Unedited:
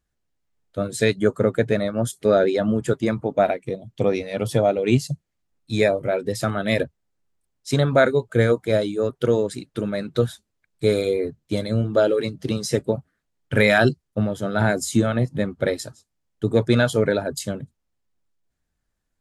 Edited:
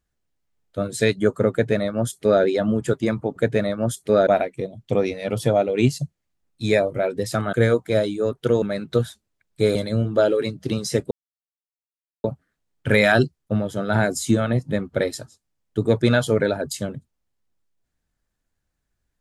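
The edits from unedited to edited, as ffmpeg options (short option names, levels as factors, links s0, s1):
-filter_complex "[0:a]asplit=7[s0][s1][s2][s3][s4][s5][s6];[s0]atrim=end=3.362[s7];[s1]atrim=start=1.518:end=2.432[s8];[s2]atrim=start=3.358:end=6.622[s9];[s3]atrim=start=8.308:end=9.402[s10];[s4]atrim=start=9.848:end=10.982[s11];[s5]atrim=start=11.538:end=12.9,asetpts=PTS-STARTPTS,afade=t=out:st=1.358:d=0.004:c=hsin,apad=pad_dur=1.13[s12];[s6]atrim=start=12.9,asetpts=PTS-STARTPTS,afade=t=in:d=0.004:c=hsin[s13];[s7][s8]acrossfade=d=0.004:c1=hsin:c2=hsin[s14];[s14][s9]acrossfade=d=0.004:c1=hsin:c2=hsin[s15];[s15][s10]acrossfade=d=0.004:c1=hsin:c2=hsin[s16];[s16][s11]acrossfade=d=0.004:c1=hsin:c2=hsin[s17];[s12][s13]concat=n=2:v=0:a=1[s18];[s17][s18]acrossfade=d=0.004:c1=hsin:c2=hsin"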